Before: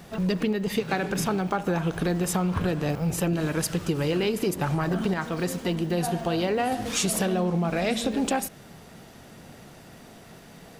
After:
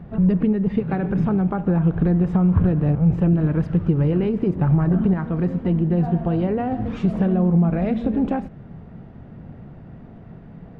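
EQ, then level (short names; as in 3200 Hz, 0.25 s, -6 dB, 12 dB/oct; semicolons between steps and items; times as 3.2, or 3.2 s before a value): tone controls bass +11 dB, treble -13 dB; tape spacing loss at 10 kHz 24 dB; high shelf 2300 Hz -8 dB; +1.5 dB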